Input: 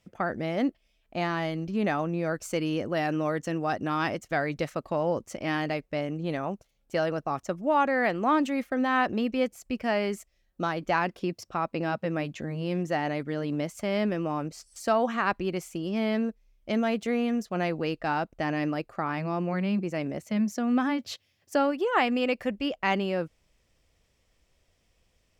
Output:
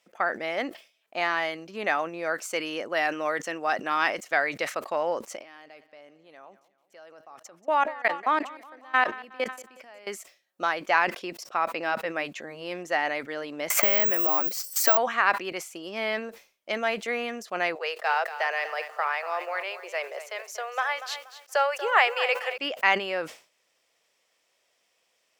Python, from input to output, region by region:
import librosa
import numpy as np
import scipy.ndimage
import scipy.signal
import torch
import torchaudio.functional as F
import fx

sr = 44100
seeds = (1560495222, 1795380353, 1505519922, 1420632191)

y = fx.chain(x, sr, fx.level_steps(step_db=24),
    fx.echo_feedback(ms=183, feedback_pct=54, wet_db=-19), at=(5.37, 10.07))
y = fx.chain(y, sr, fx.high_shelf(hz=9200.0, db=4.0),
    fx.resample_bad(factor=2, down='filtered', up='zero_stuff'),
    fx.band_squash(depth_pct=100), at=(13.7, 14.97))
y = fx.chain(y, sr, fx.steep_highpass(hz=400.0, slope=72),
    fx.echo_crushed(ms=238, feedback_pct=35, bits=9, wet_db=-12), at=(17.75, 22.58))
y = scipy.signal.sosfilt(scipy.signal.butter(2, 570.0, 'highpass', fs=sr, output='sos'), y)
y = fx.dynamic_eq(y, sr, hz=2000.0, q=1.4, threshold_db=-44.0, ratio=4.0, max_db=5)
y = fx.sustainer(y, sr, db_per_s=150.0)
y = y * librosa.db_to_amplitude(3.0)